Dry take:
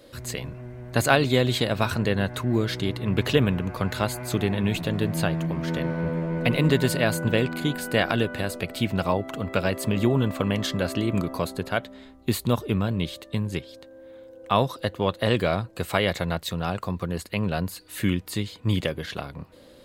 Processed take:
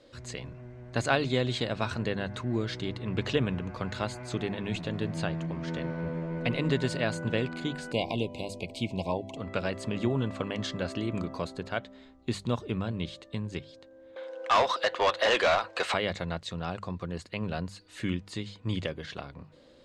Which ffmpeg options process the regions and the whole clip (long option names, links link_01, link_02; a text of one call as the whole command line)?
ffmpeg -i in.wav -filter_complex "[0:a]asettb=1/sr,asplit=3[link_01][link_02][link_03];[link_01]atrim=end=7.924[link_04];[link_02]atrim=start=7.92:end=9.37,asetpts=PTS-STARTPTS,afade=type=in:duration=0.004:curve=qsin,afade=type=out:start_time=1.446:duration=0.004:curve=qsin,asuperstop=centerf=1500:order=20:qfactor=1.4,equalizer=frequency=13000:width_type=o:width=0.74:gain=10[link_05];[link_03]atrim=start=9.366[link_06];[link_04][link_05]acrossfade=duration=0.004:curve1=hsin:curve2=qsin[link_07];[link_07][link_06]acrossfade=duration=0.004:curve1=qsin:curve2=hsin,asettb=1/sr,asplit=3[link_08][link_09][link_10];[link_08]atrim=end=14.164[link_11];[link_09]atrim=start=14.16:end=15.94,asetpts=PTS-STARTPTS,afade=type=in:duration=0.004:curve=qsin,afade=type=out:start_time=1.776:duration=0.004:curve=qsin,highpass=560,equalizer=frequency=7600:width=0.67:gain=-5,asplit=2[link_12][link_13];[link_13]highpass=frequency=720:poles=1,volume=26dB,asoftclip=type=tanh:threshold=-8dB[link_14];[link_12][link_14]amix=inputs=2:normalize=0,lowpass=frequency=4700:poles=1,volume=-6dB[link_15];[link_10]atrim=start=15.936[link_16];[link_11][link_15]acrossfade=duration=0.004:curve1=hsin:curve2=qsin[link_17];[link_17][link_16]acrossfade=duration=0.004:curve1=qsin:curve2=hsin,lowpass=frequency=7500:width=0.5412,lowpass=frequency=7500:width=1.3066,bandreject=frequency=50:width_type=h:width=6,bandreject=frequency=100:width_type=h:width=6,bandreject=frequency=150:width_type=h:width=6,bandreject=frequency=200:width_type=h:width=6,volume=-6.5dB" out.wav